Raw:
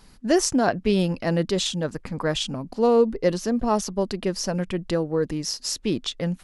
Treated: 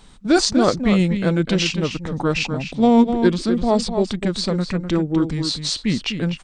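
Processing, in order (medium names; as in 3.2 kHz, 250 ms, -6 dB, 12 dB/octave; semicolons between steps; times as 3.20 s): formant shift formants -4 st; echo from a far wall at 43 m, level -8 dB; trim +4.5 dB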